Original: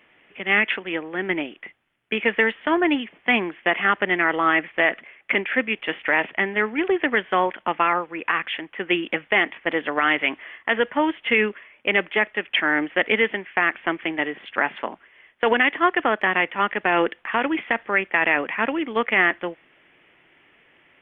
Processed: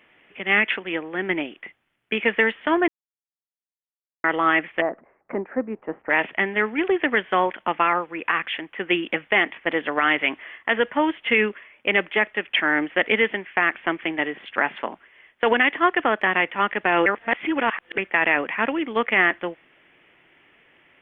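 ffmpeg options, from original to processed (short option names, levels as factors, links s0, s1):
-filter_complex "[0:a]asplit=3[s0][s1][s2];[s0]afade=t=out:st=4.8:d=0.02[s3];[s1]lowpass=f=1100:w=0.5412,lowpass=f=1100:w=1.3066,afade=t=in:st=4.8:d=0.02,afade=t=out:st=6.09:d=0.02[s4];[s2]afade=t=in:st=6.09:d=0.02[s5];[s3][s4][s5]amix=inputs=3:normalize=0,asplit=5[s6][s7][s8][s9][s10];[s6]atrim=end=2.88,asetpts=PTS-STARTPTS,afade=t=out:st=2.876:d=0.004:c=hsin[s11];[s7]atrim=start=2.88:end=4.24,asetpts=PTS-STARTPTS,volume=0[s12];[s8]atrim=start=4.24:end=17.062,asetpts=PTS-STARTPTS,afade=t=in:d=0.004:c=hsin[s13];[s9]atrim=start=17.058:end=17.982,asetpts=PTS-STARTPTS,areverse[s14];[s10]atrim=start=17.978[s15];[s11][s12][s13]concat=n=3:v=0:a=1[s16];[s16][s14]acrossfade=d=0.004:c1=hsin:c2=hsin[s17];[s17][s15]acrossfade=d=0.004:c1=hsin:c2=hsin"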